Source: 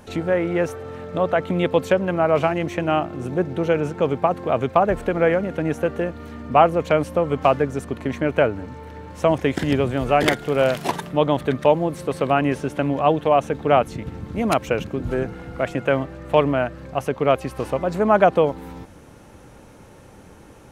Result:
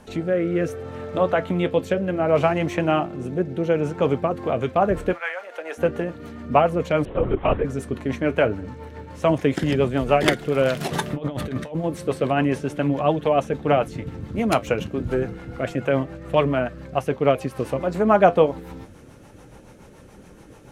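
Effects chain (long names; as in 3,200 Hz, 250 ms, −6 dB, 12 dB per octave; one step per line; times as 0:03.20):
0:05.12–0:05.77: high-pass filter 1,100 Hz → 440 Hz 24 dB per octave
0:10.80–0:11.84: compressor whose output falls as the input rises −27 dBFS, ratio −1
rotating-speaker cabinet horn 0.65 Hz, later 7 Hz, at 0:03.93
flanger 0.3 Hz, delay 4.4 ms, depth 6.4 ms, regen −63%
0:07.05–0:07.65: linear-prediction vocoder at 8 kHz whisper
level +5.5 dB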